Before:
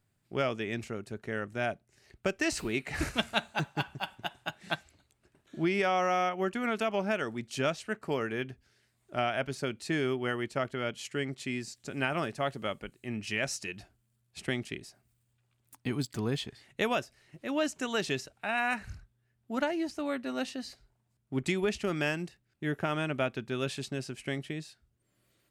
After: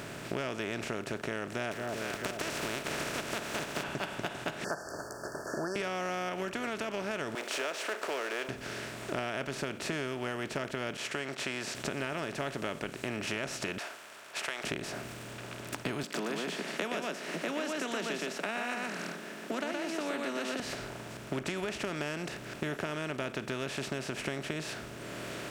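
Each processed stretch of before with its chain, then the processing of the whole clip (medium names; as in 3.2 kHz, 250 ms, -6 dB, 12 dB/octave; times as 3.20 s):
1.71–3.82 s: spectral contrast reduction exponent 0.35 + compression 2.5:1, threshold -43 dBFS + echo whose repeats swap between lows and highs 222 ms, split 930 Hz, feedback 61%, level -14 dB
4.64–5.76 s: brick-wall FIR band-stop 1.8–4.4 kHz + resonant low shelf 340 Hz -13 dB, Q 1.5
7.35–8.49 s: companding laws mixed up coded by mu + steep high-pass 440 Hz
10.97–11.75 s: high-pass 1.4 kHz 6 dB/octave + expander -55 dBFS + treble shelf 9 kHz -11.5 dB
13.78–14.64 s: high-pass 880 Hz 24 dB/octave + compression 1.5:1, threshold -50 dBFS + tape noise reduction on one side only decoder only
16.03–20.60 s: steep high-pass 170 Hz 96 dB/octave + delay 120 ms -5 dB
whole clip: spectral levelling over time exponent 0.4; band-stop 770 Hz, Q 13; compression 6:1, threshold -32 dBFS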